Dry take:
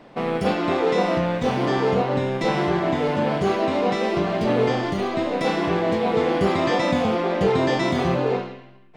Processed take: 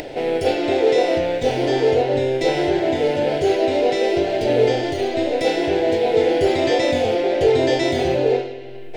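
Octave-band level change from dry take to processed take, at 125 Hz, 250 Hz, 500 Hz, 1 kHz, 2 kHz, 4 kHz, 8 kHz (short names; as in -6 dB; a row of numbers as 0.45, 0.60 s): -3.0 dB, 0.0 dB, +5.0 dB, -1.0 dB, +1.0 dB, +4.5 dB, n/a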